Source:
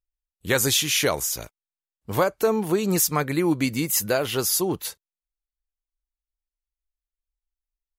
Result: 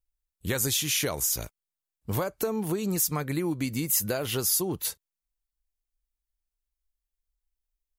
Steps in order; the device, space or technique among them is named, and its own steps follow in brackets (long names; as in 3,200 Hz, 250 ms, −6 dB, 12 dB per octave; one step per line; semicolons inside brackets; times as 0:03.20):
ASMR close-microphone chain (low-shelf EQ 230 Hz +7.5 dB; downward compressor 4 to 1, threshold −24 dBFS, peak gain reduction 9 dB; high-shelf EQ 6,200 Hz +7 dB)
level −2.5 dB